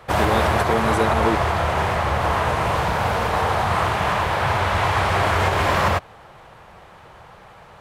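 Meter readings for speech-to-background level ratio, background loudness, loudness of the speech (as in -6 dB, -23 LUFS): -4.5 dB, -20.5 LUFS, -25.0 LUFS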